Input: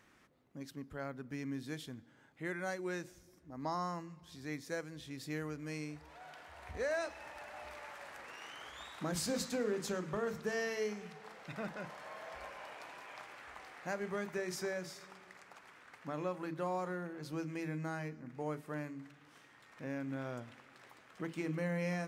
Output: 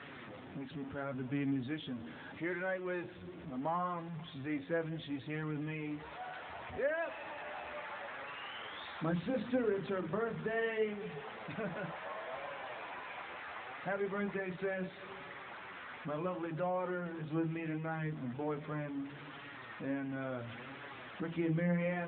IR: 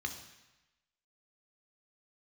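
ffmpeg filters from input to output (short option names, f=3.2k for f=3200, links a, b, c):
-filter_complex "[0:a]aeval=exprs='val(0)+0.5*0.00708*sgn(val(0))':c=same,asettb=1/sr,asplit=3[a][b][c];[a]atrim=end=9.114[d];[b]atrim=start=9.11:end=10.62,asetpts=PTS-STARTPTS,afade=t=in:d=0.004:c=qsin,afade=t=out:st=1.506:d=0.004:c=qsin,aeval=exprs='val(0)+0.00178*(sin(2*PI*60*n/s)+sin(2*PI*2*60*n/s)/2+sin(2*PI*3*60*n/s)/3+sin(2*PI*4*60*n/s)/4+sin(2*PI*5*60*n/s)/5)':c=same[e];[c]atrim=start=10.616[f];[d][e]acrossfade=d=0.004:c1=hsin:c2=qsin[g];[g][f]acrossfade=d=0.004:c1=qsin:c2=hsin,flanger=delay=7:depth=5.3:regen=31:speed=0.72:shape=sinusoidal,volume=4.5dB" -ar 8000 -c:a libopencore_amrnb -b:a 12200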